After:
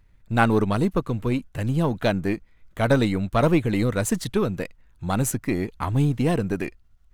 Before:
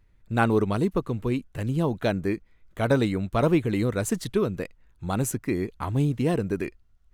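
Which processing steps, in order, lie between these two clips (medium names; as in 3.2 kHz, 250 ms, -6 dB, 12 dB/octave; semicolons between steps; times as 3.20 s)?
partial rectifier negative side -3 dB; peaking EQ 390 Hz -4 dB 0.58 oct; trim +5 dB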